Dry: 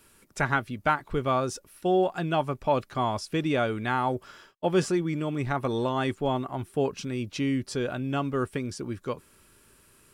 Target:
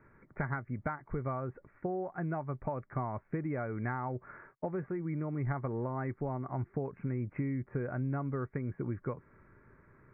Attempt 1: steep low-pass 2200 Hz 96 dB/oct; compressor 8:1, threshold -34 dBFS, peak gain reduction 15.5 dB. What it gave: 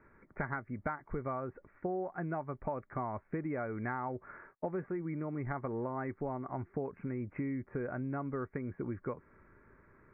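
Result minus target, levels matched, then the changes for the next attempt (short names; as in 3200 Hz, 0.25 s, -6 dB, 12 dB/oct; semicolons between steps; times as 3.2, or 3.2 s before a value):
125 Hz band -4.0 dB
add after compressor: bell 130 Hz +7 dB 0.67 oct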